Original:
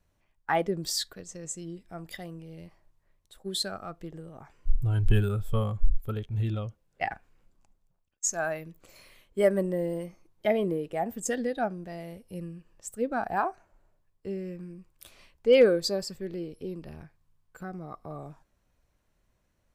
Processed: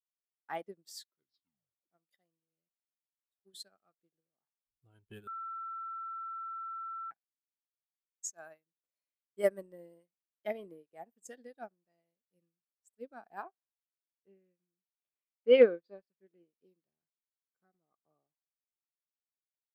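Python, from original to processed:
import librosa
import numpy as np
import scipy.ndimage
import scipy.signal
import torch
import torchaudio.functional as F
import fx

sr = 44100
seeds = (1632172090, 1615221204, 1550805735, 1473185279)

y = fx.lowpass(x, sr, hz=3200.0, slope=24, at=(13.43, 16.55))
y = fx.edit(y, sr, fx.tape_stop(start_s=1.04, length_s=0.86),
    fx.bleep(start_s=5.27, length_s=1.84, hz=1340.0, db=-22.5), tone=tone)
y = scipy.signal.sosfilt(scipy.signal.butter(2, 210.0, 'highpass', fs=sr, output='sos'), y)
y = fx.high_shelf(y, sr, hz=7800.0, db=5.0)
y = fx.upward_expand(y, sr, threshold_db=-46.0, expansion=2.5)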